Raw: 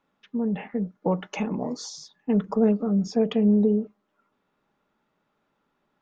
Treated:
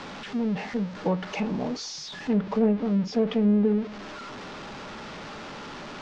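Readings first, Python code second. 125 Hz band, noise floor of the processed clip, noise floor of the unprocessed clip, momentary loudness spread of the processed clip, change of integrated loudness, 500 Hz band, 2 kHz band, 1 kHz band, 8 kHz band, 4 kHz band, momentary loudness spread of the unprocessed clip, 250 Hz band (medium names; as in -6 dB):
-1.0 dB, -40 dBFS, -75 dBFS, 16 LU, -1.5 dB, -1.5 dB, +6.0 dB, +1.5 dB, no reading, +4.5 dB, 14 LU, -1.0 dB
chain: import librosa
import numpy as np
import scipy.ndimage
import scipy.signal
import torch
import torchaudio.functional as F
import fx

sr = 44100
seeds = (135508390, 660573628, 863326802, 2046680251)

y = x + 0.5 * 10.0 ** (-30.5 / 20.0) * np.sign(x)
y = fx.env_lowpass_down(y, sr, base_hz=2500.0, full_db=-15.5)
y = scipy.signal.sosfilt(scipy.signal.butter(4, 5900.0, 'lowpass', fs=sr, output='sos'), y)
y = F.gain(torch.from_numpy(y), -2.5).numpy()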